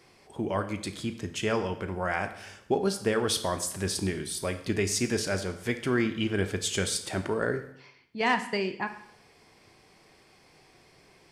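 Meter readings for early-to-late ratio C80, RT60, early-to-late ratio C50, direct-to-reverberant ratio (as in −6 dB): 14.0 dB, 0.75 s, 11.0 dB, 8.0 dB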